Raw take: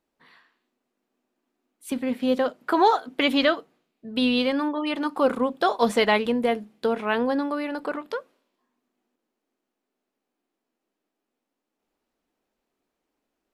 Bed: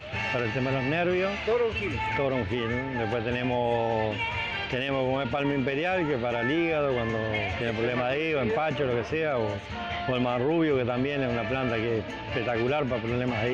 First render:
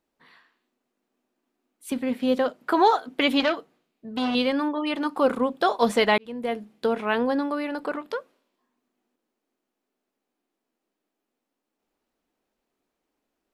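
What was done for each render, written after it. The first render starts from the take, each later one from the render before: 3.40–4.35 s: transformer saturation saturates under 1.5 kHz; 6.18–6.71 s: fade in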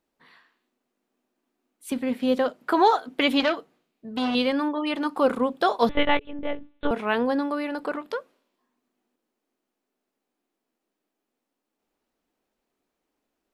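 5.89–6.91 s: monotone LPC vocoder at 8 kHz 290 Hz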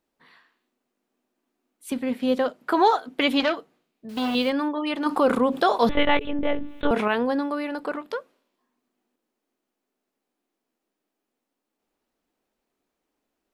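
4.09–4.50 s: word length cut 8-bit, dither none; 5.06–7.08 s: level flattener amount 50%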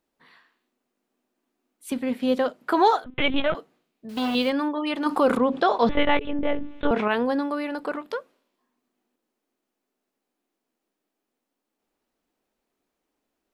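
3.04–3.55 s: LPC vocoder at 8 kHz pitch kept; 5.37–7.11 s: distance through air 110 m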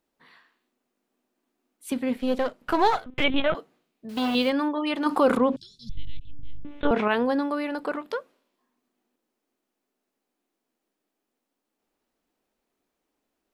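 2.16–3.24 s: partial rectifier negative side -7 dB; 5.56–6.65 s: Chebyshev band-stop 120–5100 Hz, order 3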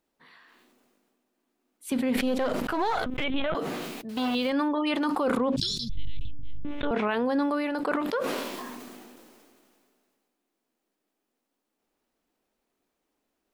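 peak limiter -18 dBFS, peak gain reduction 9.5 dB; decay stretcher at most 25 dB/s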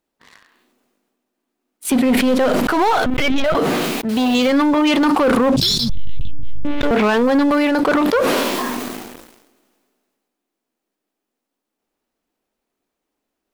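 waveshaping leveller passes 3; in parallel at +1 dB: peak limiter -21.5 dBFS, peak gain reduction 10 dB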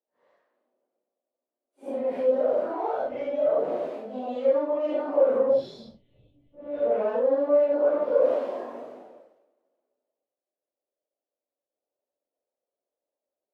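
phase randomisation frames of 200 ms; band-pass filter 570 Hz, Q 5.9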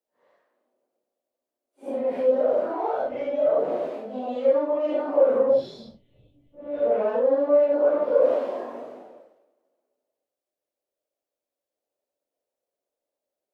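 trim +2 dB

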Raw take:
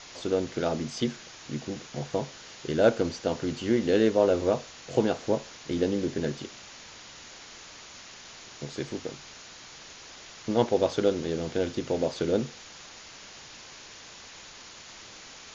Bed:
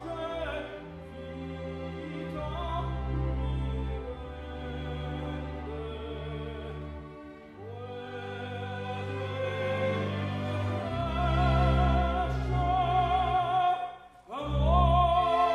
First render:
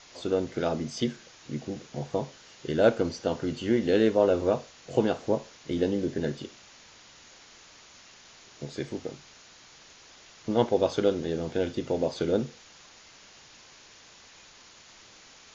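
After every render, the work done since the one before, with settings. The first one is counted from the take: noise print and reduce 6 dB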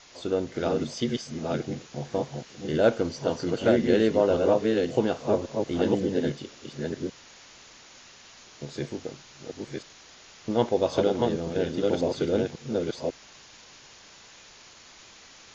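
chunks repeated in reverse 546 ms, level -2 dB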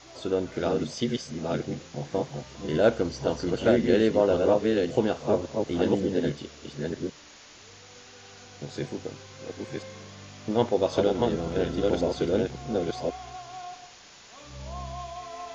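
add bed -14.5 dB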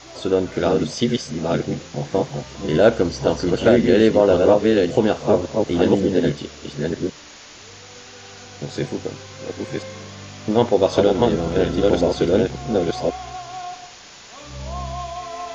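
trim +8 dB; peak limiter -3 dBFS, peak gain reduction 3 dB

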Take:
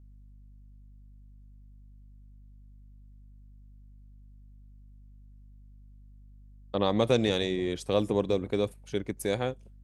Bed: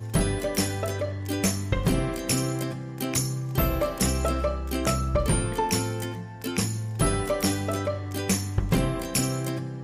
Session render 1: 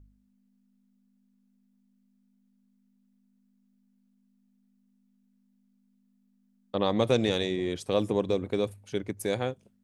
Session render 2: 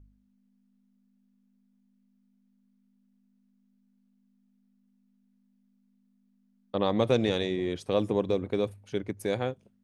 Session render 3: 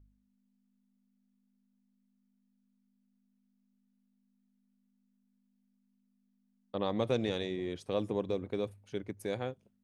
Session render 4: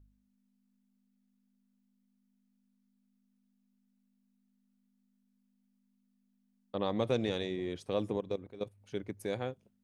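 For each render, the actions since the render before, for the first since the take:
de-hum 50 Hz, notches 3
treble shelf 5.3 kHz -8 dB; band-stop 7.6 kHz, Q 15
trim -6.5 dB
8.16–8.81 s: level held to a coarse grid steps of 16 dB

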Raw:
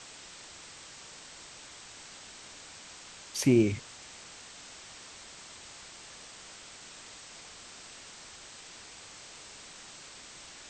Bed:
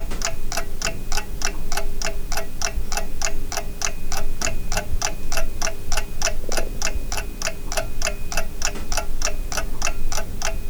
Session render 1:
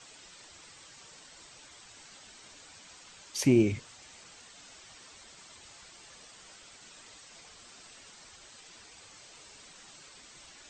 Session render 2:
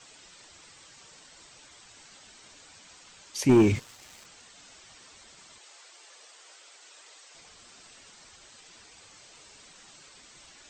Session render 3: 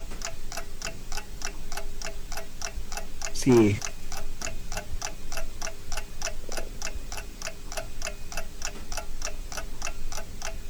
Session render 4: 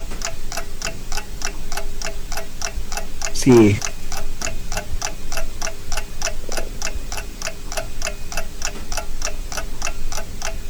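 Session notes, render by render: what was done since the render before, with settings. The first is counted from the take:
noise reduction 8 dB, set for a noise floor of -50 dBFS
3.49–4.26 s: waveshaping leveller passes 2; 5.58–7.35 s: high-pass 380 Hz 24 dB/octave
add bed -10 dB
trim +8.5 dB; peak limiter -3 dBFS, peak gain reduction 1 dB

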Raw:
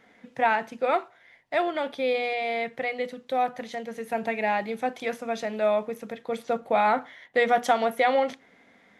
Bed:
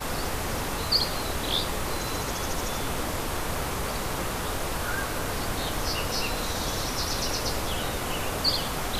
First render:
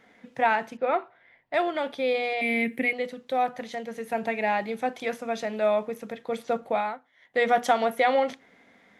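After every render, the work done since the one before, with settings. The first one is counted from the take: 0.77–1.54 s: distance through air 280 m; 2.41–2.93 s: FFT filter 170 Hz 0 dB, 240 Hz +15 dB, 700 Hz -9 dB, 1.3 kHz -9 dB, 2.3 kHz +8 dB, 3.5 kHz -3 dB, 6.4 kHz -5 dB, 9.6 kHz +14 dB; 6.64–7.46 s: dip -21 dB, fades 0.34 s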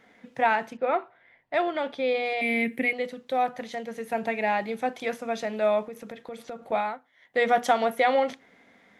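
0.73–2.26 s: distance through air 53 m; 5.87–6.72 s: compression 4:1, threshold -35 dBFS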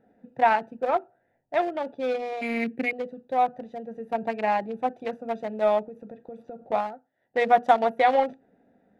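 local Wiener filter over 41 samples; peaking EQ 800 Hz +5.5 dB 0.7 oct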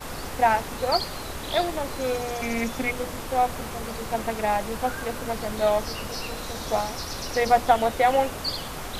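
add bed -4.5 dB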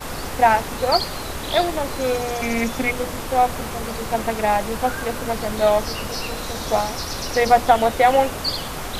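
trim +5 dB; peak limiter -3 dBFS, peak gain reduction 1.5 dB

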